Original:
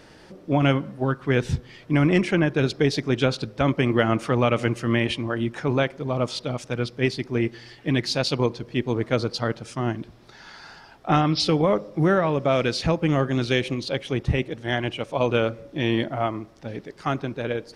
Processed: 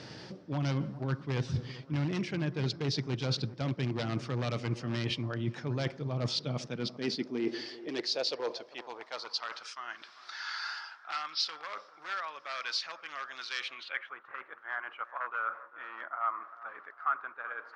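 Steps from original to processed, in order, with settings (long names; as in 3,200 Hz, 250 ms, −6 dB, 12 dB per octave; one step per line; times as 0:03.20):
wave folding −14 dBFS
reversed playback
downward compressor 8 to 1, threshold −34 dBFS, peak gain reduction 16.5 dB
reversed playback
low-pass filter sweep 5,100 Hz → 1,300 Hz, 0:13.62–0:14.13
bucket-brigade delay 396 ms, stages 4,096, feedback 46%, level −15.5 dB
high-pass filter sweep 120 Hz → 1,300 Hz, 0:06.24–0:09.71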